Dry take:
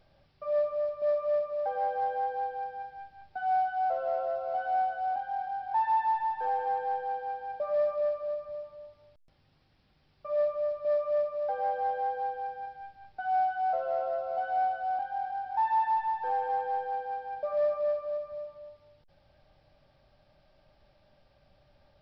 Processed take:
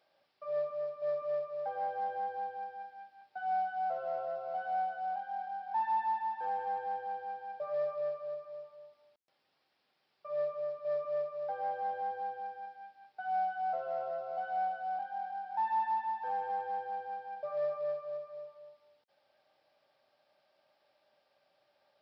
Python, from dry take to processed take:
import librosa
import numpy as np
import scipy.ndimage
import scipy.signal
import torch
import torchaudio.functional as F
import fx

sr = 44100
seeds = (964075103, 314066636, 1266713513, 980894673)

y = fx.octave_divider(x, sr, octaves=2, level_db=1.0)
y = scipy.signal.sosfilt(scipy.signal.butter(2, 500.0, 'highpass', fs=sr, output='sos'), y)
y = y * 10.0 ** (-4.5 / 20.0)